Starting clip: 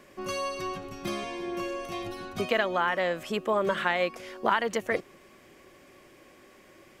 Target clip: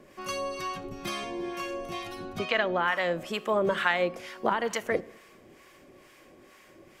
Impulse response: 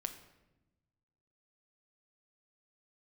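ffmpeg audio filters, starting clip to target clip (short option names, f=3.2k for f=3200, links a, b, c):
-filter_complex "[0:a]asplit=3[a][b][c];[a]afade=t=out:st=2.38:d=0.02[d];[b]lowpass=5.1k,afade=t=in:st=2.38:d=0.02,afade=t=out:st=2.84:d=0.02[e];[c]afade=t=in:st=2.84:d=0.02[f];[d][e][f]amix=inputs=3:normalize=0,asplit=2[g][h];[1:a]atrim=start_sample=2205[i];[h][i]afir=irnorm=-1:irlink=0,volume=-5dB[j];[g][j]amix=inputs=2:normalize=0,acrossover=split=790[k][l];[k]aeval=exprs='val(0)*(1-0.7/2+0.7/2*cos(2*PI*2.2*n/s))':c=same[m];[l]aeval=exprs='val(0)*(1-0.7/2-0.7/2*cos(2*PI*2.2*n/s))':c=same[n];[m][n]amix=inputs=2:normalize=0"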